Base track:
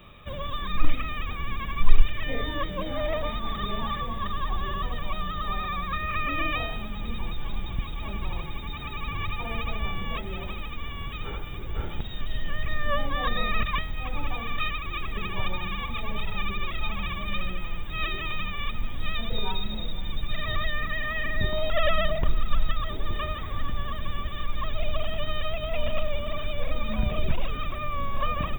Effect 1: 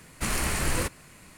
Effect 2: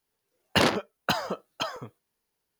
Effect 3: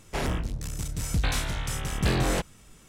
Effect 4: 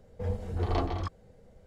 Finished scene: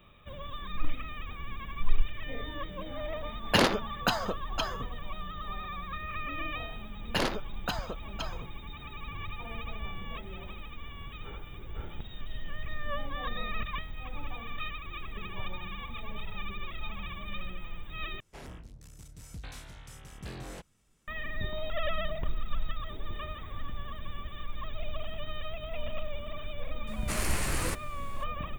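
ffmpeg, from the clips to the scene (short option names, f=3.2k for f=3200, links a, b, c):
-filter_complex "[2:a]asplit=2[a][b];[0:a]volume=-8.5dB,asplit=2[c][d];[c]atrim=end=18.204[e];[3:a]atrim=end=2.88,asetpts=PTS-STARTPTS,volume=-17.5dB[f];[d]atrim=start=21.076[g];[a]atrim=end=2.59,asetpts=PTS-STARTPTS,volume=-1.5dB,afade=t=in:d=0.004:c=hsin,afade=t=out:st=2.586:d=0.004:c=hsin,adelay=2980[h];[b]atrim=end=2.59,asetpts=PTS-STARTPTS,volume=-7.5dB,afade=t=in:d=0.004:c=hsin,afade=t=out:st=2.586:d=0.004:c=hsin,adelay=6590[i];[1:a]atrim=end=1.37,asetpts=PTS-STARTPTS,volume=-4.5dB,afade=t=in:d=0.004:c=hsin,afade=t=out:st=1.366:d=0.004:c=hsin,adelay=26870[j];[e][f]acrossfade=d=0.004:c1=hsin:c2=hsin[k];[k][g]acrossfade=d=0.004:c1=hsin:c2=hsin[l];[l][h][i][j]amix=inputs=4:normalize=0"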